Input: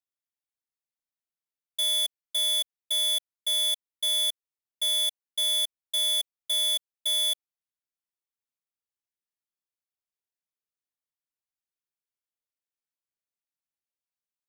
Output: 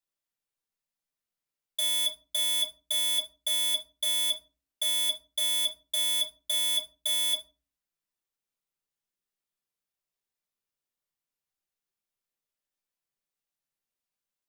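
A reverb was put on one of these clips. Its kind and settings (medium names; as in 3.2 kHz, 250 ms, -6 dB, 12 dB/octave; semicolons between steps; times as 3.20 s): simulated room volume 140 m³, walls furnished, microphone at 1.2 m; trim +1 dB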